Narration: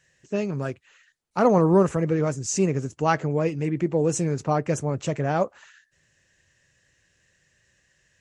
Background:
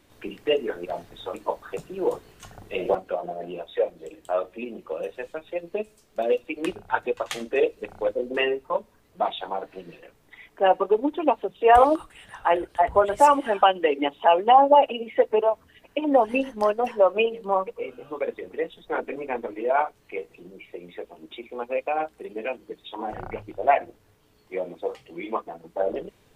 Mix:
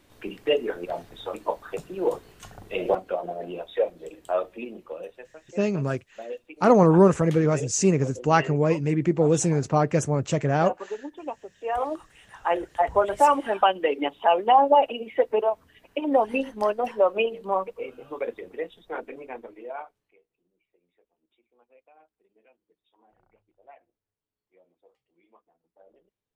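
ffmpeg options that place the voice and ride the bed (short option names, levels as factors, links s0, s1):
-filter_complex "[0:a]adelay=5250,volume=1.26[s0];[1:a]volume=3.55,afade=t=out:st=4.4:d=0.92:silence=0.223872,afade=t=in:st=11.74:d=0.94:silence=0.281838,afade=t=out:st=18.22:d=1.96:silence=0.0334965[s1];[s0][s1]amix=inputs=2:normalize=0"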